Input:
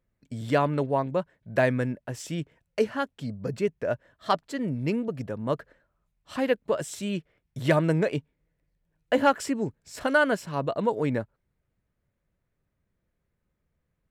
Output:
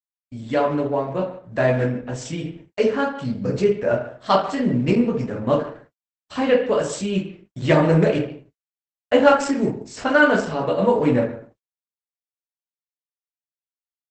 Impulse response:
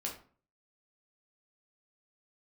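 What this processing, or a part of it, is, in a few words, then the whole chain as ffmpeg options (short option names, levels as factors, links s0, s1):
speakerphone in a meeting room: -filter_complex "[1:a]atrim=start_sample=2205[s0];[0:a][s0]afir=irnorm=-1:irlink=0,asplit=2[s1][s2];[s2]adelay=140,highpass=300,lowpass=3400,asoftclip=type=hard:threshold=0.141,volume=0.2[s3];[s1][s3]amix=inputs=2:normalize=0,dynaudnorm=f=780:g=5:m=2,agate=range=0.00316:threshold=0.00447:ratio=16:detection=peak,volume=1.19" -ar 48000 -c:a libopus -b:a 12k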